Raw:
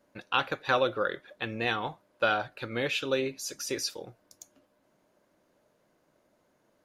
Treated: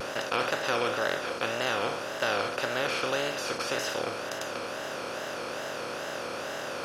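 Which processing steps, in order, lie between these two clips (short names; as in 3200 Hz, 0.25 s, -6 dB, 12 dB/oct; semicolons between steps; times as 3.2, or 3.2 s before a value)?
per-bin compression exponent 0.2; wow and flutter 140 cents; gain -8.5 dB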